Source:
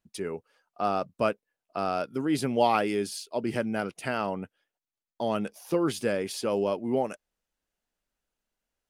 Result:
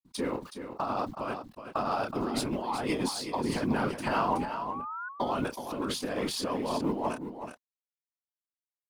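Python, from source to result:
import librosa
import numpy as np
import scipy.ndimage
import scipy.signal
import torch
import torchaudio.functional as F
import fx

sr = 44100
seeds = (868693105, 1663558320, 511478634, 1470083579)

y = fx.law_mismatch(x, sr, coded='A')
y = fx.chorus_voices(y, sr, voices=4, hz=0.75, base_ms=27, depth_ms=4.0, mix_pct=30)
y = fx.over_compress(y, sr, threshold_db=-35.0, ratio=-1.0)
y = fx.whisperise(y, sr, seeds[0])
y = fx.graphic_eq_15(y, sr, hz=(250, 1000, 4000), db=(7, 11, 6))
y = fx.spec_paint(y, sr, seeds[1], shape='rise', start_s=4.18, length_s=0.91, low_hz=660.0, high_hz=1500.0, level_db=-38.0)
y = y + 10.0 ** (-9.0 / 20.0) * np.pad(y, (int(372 * sr / 1000.0), 0))[:len(y)]
y = fx.sustainer(y, sr, db_per_s=130.0)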